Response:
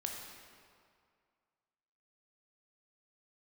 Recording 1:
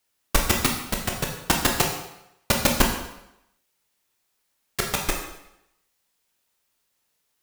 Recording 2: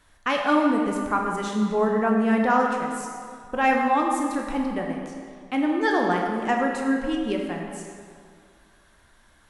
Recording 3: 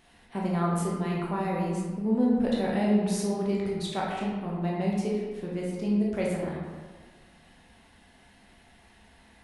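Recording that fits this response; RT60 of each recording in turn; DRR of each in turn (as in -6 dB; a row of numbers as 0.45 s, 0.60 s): 2; 0.85 s, 2.2 s, 1.5 s; 0.5 dB, 0.5 dB, -4.0 dB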